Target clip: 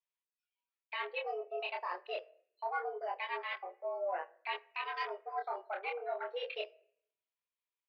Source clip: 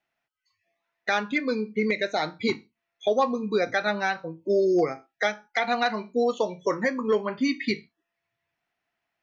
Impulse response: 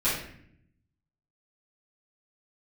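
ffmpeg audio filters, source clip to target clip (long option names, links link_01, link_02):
-filter_complex "[0:a]aemphasis=mode=production:type=75fm,afwtdn=0.0398,areverse,acompressor=threshold=-31dB:ratio=6,areverse,highpass=frequency=200:width_type=q:width=0.5412,highpass=frequency=200:width_type=q:width=1.307,lowpass=frequency=3400:width_type=q:width=0.5176,lowpass=frequency=3400:width_type=q:width=0.7071,lowpass=frequency=3400:width_type=q:width=1.932,afreqshift=150,asetrate=51597,aresample=44100,asplit=2[link_01][link_02];[1:a]atrim=start_sample=2205,lowpass=2100[link_03];[link_02][link_03]afir=irnorm=-1:irlink=0,volume=-27.5dB[link_04];[link_01][link_04]amix=inputs=2:normalize=0,flanger=delay=20:depth=7.2:speed=0.25,volume=-1.5dB"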